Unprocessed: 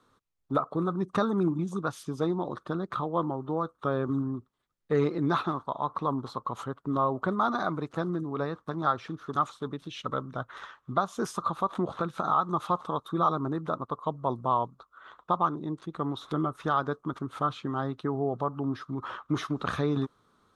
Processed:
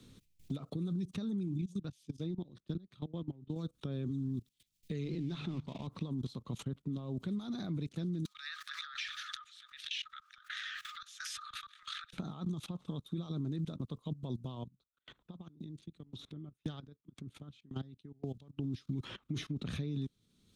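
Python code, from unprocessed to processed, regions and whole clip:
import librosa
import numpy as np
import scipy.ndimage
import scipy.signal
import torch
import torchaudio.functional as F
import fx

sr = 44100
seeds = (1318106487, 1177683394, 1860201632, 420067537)

y = fx.chain(x, sr, fx.high_shelf(hz=4000.0, db=-7.5),
    fx.upward_expand(threshold_db=-36.0, expansion=2.5), at=(1.61, 3.56))
y = fx.chain(y, sr, fx.law_mismatch(coded='mu'),
    fx.air_absorb(metres=97.0),
    fx.hum_notches(base_hz=50, count=3), at=(5.04, 5.87))
y = fx.chain(y, sr, fx.cheby_ripple_highpass(hz=1200.0, ripple_db=6),
    fx.pre_swell(db_per_s=23.0), at=(8.25, 12.13))
y = fx.chain(y, sr, fx.level_steps(step_db=10),
    fx.tremolo_decay(direction='decaying', hz=1.9, depth_db=35), at=(14.55, 18.59))
y = fx.level_steps(y, sr, step_db=20)
y = fx.curve_eq(y, sr, hz=(200.0, 1200.0, 2400.0), db=(0, -28, -5))
y = fx.band_squash(y, sr, depth_pct=70)
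y = F.gain(torch.from_numpy(y), 8.0).numpy()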